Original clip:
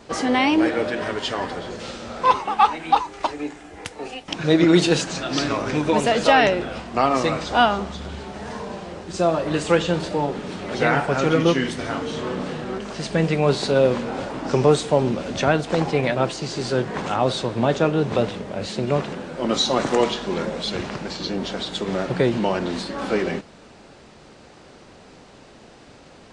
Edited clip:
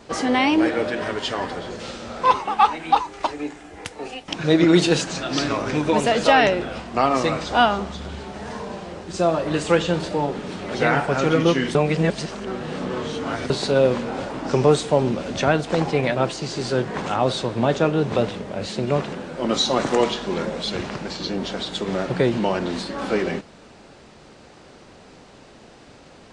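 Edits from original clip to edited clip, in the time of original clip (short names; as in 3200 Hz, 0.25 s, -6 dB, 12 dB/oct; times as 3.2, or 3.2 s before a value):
11.75–13.5 reverse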